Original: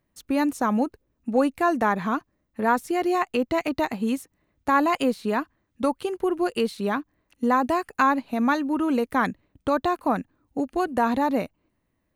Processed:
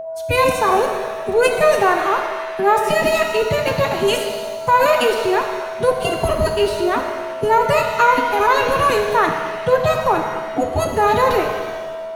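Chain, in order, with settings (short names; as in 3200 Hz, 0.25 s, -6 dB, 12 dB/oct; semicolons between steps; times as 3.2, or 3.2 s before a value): formant-preserving pitch shift +10 st; whine 650 Hz -31 dBFS; shimmer reverb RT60 1.5 s, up +7 st, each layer -8 dB, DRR 3.5 dB; gain +6 dB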